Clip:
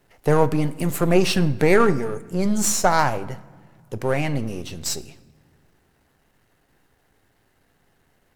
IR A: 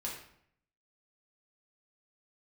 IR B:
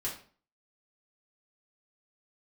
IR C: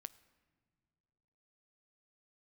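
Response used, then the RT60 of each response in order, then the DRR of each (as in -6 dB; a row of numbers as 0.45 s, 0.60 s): C; 0.65 s, 0.45 s, no single decay rate; -4.0 dB, -5.5 dB, 15.0 dB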